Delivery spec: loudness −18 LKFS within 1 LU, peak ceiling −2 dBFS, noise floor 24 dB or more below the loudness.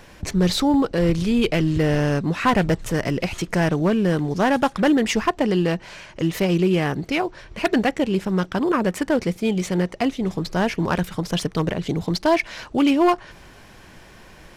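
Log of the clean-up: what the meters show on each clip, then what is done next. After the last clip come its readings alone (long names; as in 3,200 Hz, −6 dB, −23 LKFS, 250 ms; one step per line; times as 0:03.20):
share of clipped samples 0.7%; peaks flattened at −11.0 dBFS; integrated loudness −21.5 LKFS; sample peak −11.0 dBFS; target loudness −18.0 LKFS
→ clipped peaks rebuilt −11 dBFS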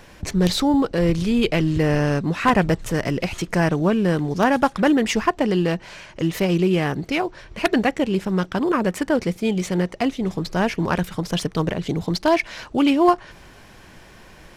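share of clipped samples 0.0%; integrated loudness −21.0 LKFS; sample peak −2.0 dBFS; target loudness −18.0 LKFS
→ level +3 dB
brickwall limiter −2 dBFS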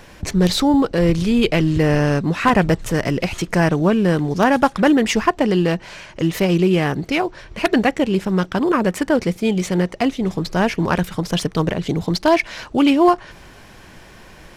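integrated loudness −18.5 LKFS; sample peak −2.0 dBFS; background noise floor −43 dBFS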